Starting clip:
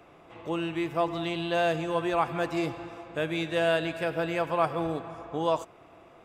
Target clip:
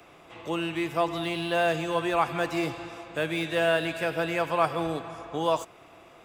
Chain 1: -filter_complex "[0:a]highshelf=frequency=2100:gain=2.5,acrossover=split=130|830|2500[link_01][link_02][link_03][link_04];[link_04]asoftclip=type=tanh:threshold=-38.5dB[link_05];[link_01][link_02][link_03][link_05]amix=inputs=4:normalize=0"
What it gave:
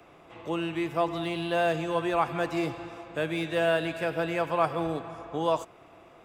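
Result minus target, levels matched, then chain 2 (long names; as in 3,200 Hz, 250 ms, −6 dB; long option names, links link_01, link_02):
4,000 Hz band −2.5 dB
-filter_complex "[0:a]highshelf=frequency=2100:gain=10,acrossover=split=130|830|2500[link_01][link_02][link_03][link_04];[link_04]asoftclip=type=tanh:threshold=-38.5dB[link_05];[link_01][link_02][link_03][link_05]amix=inputs=4:normalize=0"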